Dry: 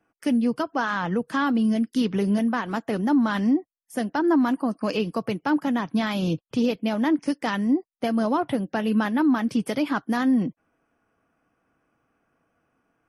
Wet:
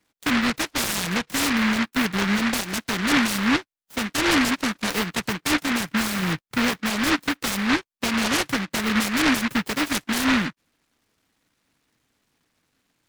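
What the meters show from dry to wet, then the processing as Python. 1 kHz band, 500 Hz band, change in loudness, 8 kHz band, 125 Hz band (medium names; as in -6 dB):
+0.5 dB, -4.0 dB, +1.5 dB, no reading, 0.0 dB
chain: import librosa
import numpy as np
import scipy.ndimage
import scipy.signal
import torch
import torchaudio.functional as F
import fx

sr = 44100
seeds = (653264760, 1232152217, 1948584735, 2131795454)

y = fx.noise_mod_delay(x, sr, seeds[0], noise_hz=1600.0, depth_ms=0.43)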